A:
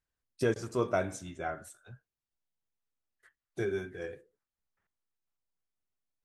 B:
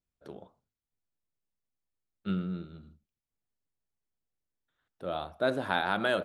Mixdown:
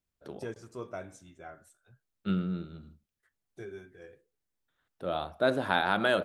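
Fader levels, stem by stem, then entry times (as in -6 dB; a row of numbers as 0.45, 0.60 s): -10.5, +2.0 dB; 0.00, 0.00 s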